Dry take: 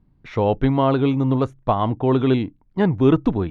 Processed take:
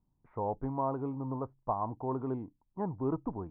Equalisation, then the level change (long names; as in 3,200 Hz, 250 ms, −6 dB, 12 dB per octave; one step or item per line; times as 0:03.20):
transistor ladder low-pass 1,100 Hz, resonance 55%
−8.0 dB